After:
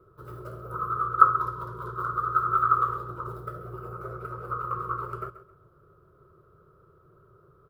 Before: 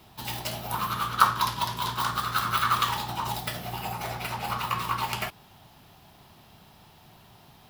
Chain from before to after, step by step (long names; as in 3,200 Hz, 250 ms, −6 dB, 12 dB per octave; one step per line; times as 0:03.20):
drawn EQ curve 150 Hz 0 dB, 250 Hz −17 dB, 370 Hz +10 dB, 530 Hz +7 dB, 810 Hz −26 dB, 1,300 Hz +11 dB, 1,800 Hz −20 dB, 2,800 Hz −30 dB, 6,400 Hz −28 dB, 9,400 Hz −22 dB
on a send: repeating echo 133 ms, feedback 27%, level −14 dB
on the sum: level −3.5 dB